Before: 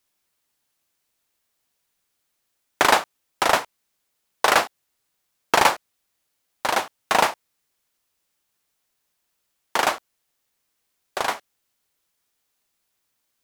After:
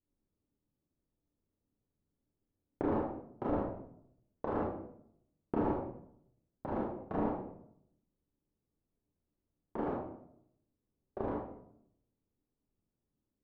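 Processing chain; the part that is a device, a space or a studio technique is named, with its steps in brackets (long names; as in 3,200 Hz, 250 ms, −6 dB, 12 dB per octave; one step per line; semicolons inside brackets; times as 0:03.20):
television next door (downward compressor 3 to 1, threshold −20 dBFS, peak gain reduction 7.5 dB; low-pass filter 280 Hz 12 dB per octave; convolution reverb RT60 0.70 s, pre-delay 25 ms, DRR −4.5 dB)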